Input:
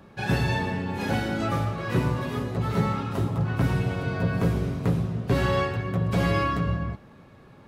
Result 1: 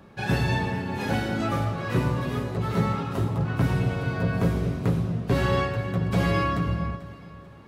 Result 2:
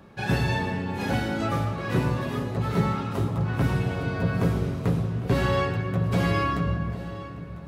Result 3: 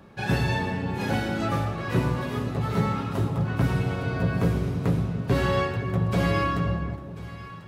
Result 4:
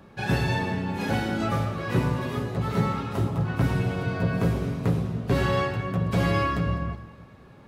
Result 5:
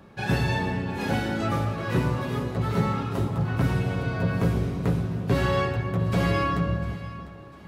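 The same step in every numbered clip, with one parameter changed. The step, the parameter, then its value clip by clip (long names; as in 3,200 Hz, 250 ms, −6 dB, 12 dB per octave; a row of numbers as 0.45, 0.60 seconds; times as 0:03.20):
delay that swaps between a low-pass and a high-pass, delay time: 220, 813, 521, 103, 350 milliseconds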